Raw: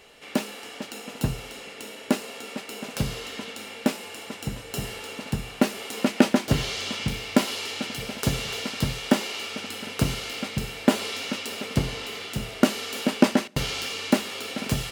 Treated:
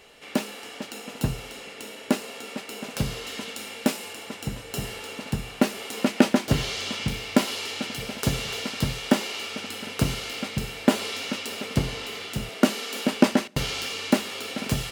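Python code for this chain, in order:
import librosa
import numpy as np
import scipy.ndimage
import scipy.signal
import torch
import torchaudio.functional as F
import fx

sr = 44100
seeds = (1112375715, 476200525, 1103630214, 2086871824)

y = fx.high_shelf(x, sr, hz=4600.0, db=5.5, at=(3.27, 4.13))
y = fx.steep_highpass(y, sr, hz=150.0, slope=36, at=(12.49, 13.06))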